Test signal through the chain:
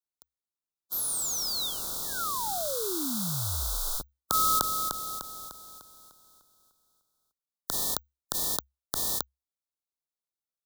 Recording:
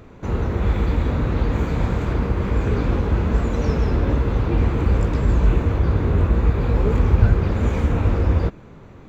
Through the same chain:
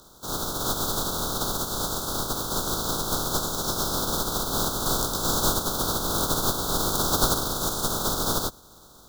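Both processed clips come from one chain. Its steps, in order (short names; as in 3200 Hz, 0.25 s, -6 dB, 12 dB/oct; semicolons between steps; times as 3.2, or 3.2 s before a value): spectral contrast lowered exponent 0.25; frequency shift -67 Hz; elliptic band-stop 1400–3600 Hz, stop band 50 dB; gain -7 dB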